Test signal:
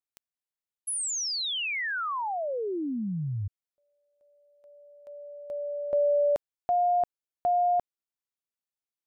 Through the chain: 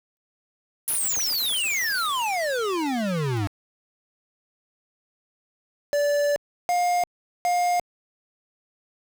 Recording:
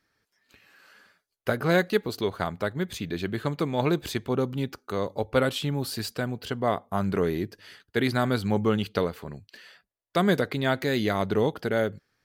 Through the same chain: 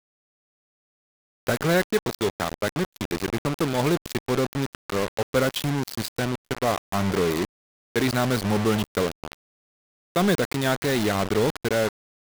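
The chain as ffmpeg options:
-af "acrusher=bits=4:mix=0:aa=0.000001,aeval=exprs='0.282*(cos(1*acos(clip(val(0)/0.282,-1,1)))-cos(1*PI/2))+0.0251*(cos(5*acos(clip(val(0)/0.282,-1,1)))-cos(5*PI/2))':c=same" -ar 44100 -c:a adpcm_ima_wav

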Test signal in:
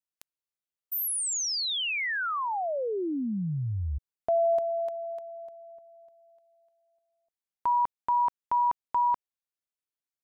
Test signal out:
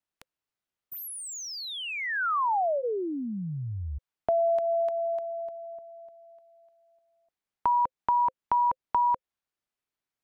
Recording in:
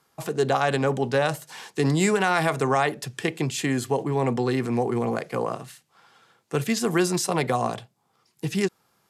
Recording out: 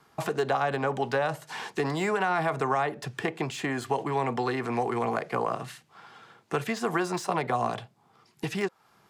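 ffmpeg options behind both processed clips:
-filter_complex "[0:a]highshelf=f=4.8k:g=-12,bandreject=f=520:w=12,acrossover=split=610|1300[a][b][c];[a]acompressor=threshold=-42dB:ratio=4[d];[b]acompressor=threshold=-36dB:ratio=4[e];[c]acompressor=threshold=-44dB:ratio=4[f];[d][e][f]amix=inputs=3:normalize=0,acrossover=split=2500[g][h];[h]asoftclip=type=tanh:threshold=-40dB[i];[g][i]amix=inputs=2:normalize=0,volume=7.5dB"

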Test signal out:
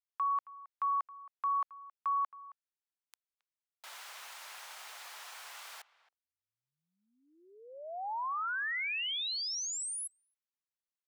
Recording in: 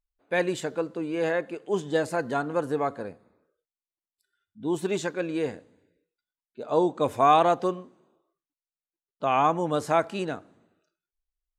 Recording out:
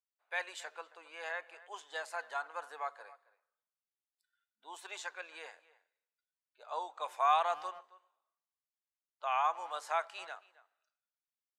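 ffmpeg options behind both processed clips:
-filter_complex "[0:a]highpass=f=800:w=0.5412,highpass=f=800:w=1.3066,highshelf=f=7.7k:g=-6,asplit=2[a][b];[b]adelay=270,highpass=300,lowpass=3.4k,asoftclip=type=hard:threshold=-19dB,volume=-19dB[c];[a][c]amix=inputs=2:normalize=0,volume=-6.5dB"

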